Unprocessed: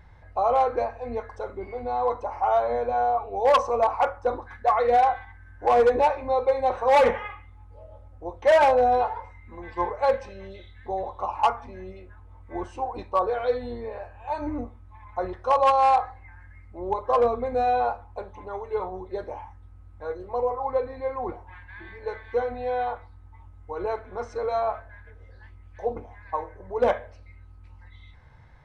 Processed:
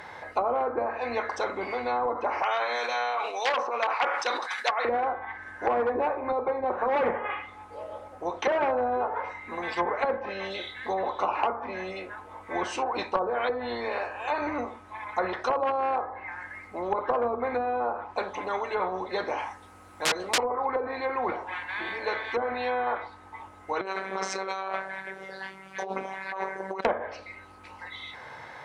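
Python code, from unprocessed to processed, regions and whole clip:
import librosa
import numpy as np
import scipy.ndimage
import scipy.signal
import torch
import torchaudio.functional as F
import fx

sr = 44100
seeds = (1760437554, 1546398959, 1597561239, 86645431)

y = fx.chain(x, sr, fx.highpass(hz=890.0, slope=6),
    fx.tilt_shelf(db=-8.0, hz=1300.0),
    fx.sustainer(db_per_s=98.0), at=(2.42, 4.85))
y = fx.chain(y, sr, fx.high_shelf(hz=5100.0, db=9.0),
    fx.overflow_wrap(gain_db=26.5), at=(19.38, 20.38))
y = fx.chain(y, sr, fx.robotise(hz=192.0),
    fx.over_compress(threshold_db=-39.0, ratio=-1.0), at=(23.81, 26.85))
y = scipy.signal.sosfilt(scipy.signal.butter(2, 400.0, 'highpass', fs=sr, output='sos'), y)
y = fx.env_lowpass_down(y, sr, base_hz=600.0, full_db=-21.5)
y = fx.spectral_comp(y, sr, ratio=2.0)
y = F.gain(torch.from_numpy(y), 3.0).numpy()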